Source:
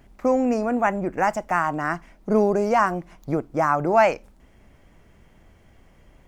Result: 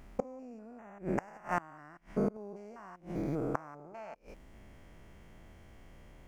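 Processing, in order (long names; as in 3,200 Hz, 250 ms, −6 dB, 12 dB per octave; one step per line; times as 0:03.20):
spectrum averaged block by block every 200 ms
gate with flip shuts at −18 dBFS, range −25 dB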